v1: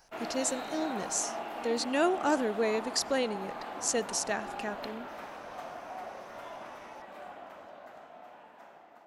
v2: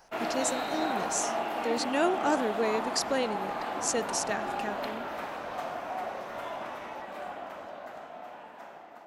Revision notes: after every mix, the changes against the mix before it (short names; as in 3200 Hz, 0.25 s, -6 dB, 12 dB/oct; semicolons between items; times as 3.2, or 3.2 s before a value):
background +6.5 dB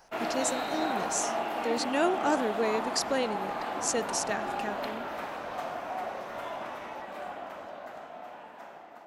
none